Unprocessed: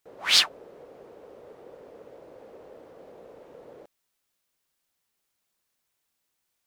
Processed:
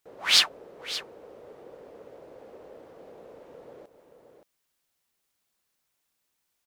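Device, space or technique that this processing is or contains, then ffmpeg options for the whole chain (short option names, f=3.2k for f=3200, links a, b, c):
ducked delay: -filter_complex "[0:a]asplit=3[a][b][c];[b]adelay=573,volume=-8dB[d];[c]apad=whole_len=319216[e];[d][e]sidechaincompress=threshold=-52dB:ratio=8:attack=23:release=203[f];[a][f]amix=inputs=2:normalize=0"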